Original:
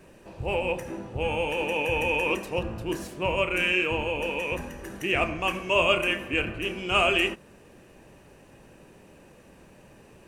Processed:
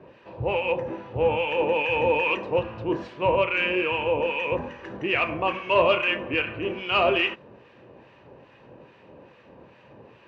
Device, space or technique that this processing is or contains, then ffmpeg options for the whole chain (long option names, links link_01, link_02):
guitar amplifier with harmonic tremolo: -filter_complex "[0:a]acrossover=split=1100[link_01][link_02];[link_01]aeval=exprs='val(0)*(1-0.7/2+0.7/2*cos(2*PI*2.4*n/s))':channel_layout=same[link_03];[link_02]aeval=exprs='val(0)*(1-0.7/2-0.7/2*cos(2*PI*2.4*n/s))':channel_layout=same[link_04];[link_03][link_04]amix=inputs=2:normalize=0,asoftclip=type=tanh:threshold=-16.5dB,highpass=94,equalizer=frequency=120:width_type=q:width=4:gain=4,equalizer=frequency=180:width_type=q:width=4:gain=-4,equalizer=frequency=510:width_type=q:width=4:gain=5,equalizer=frequency=980:width_type=q:width=4:gain=6,lowpass=frequency=3900:width=0.5412,lowpass=frequency=3900:width=1.3066,volume=4.5dB"